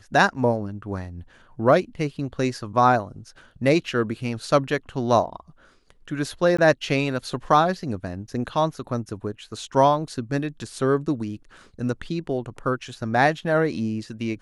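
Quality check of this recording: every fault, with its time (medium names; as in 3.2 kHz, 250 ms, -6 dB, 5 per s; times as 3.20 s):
6.57–6.58 s: dropout 15 ms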